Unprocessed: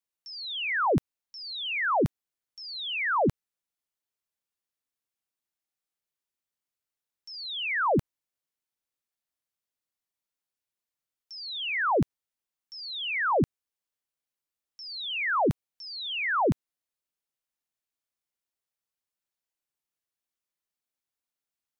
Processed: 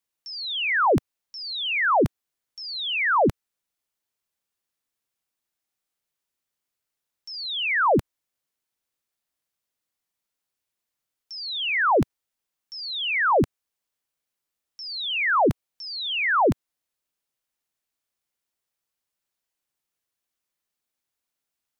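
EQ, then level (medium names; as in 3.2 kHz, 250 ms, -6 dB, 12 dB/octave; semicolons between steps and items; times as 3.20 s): dynamic bell 160 Hz, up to -5 dB, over -40 dBFS, Q 1.3; +5.5 dB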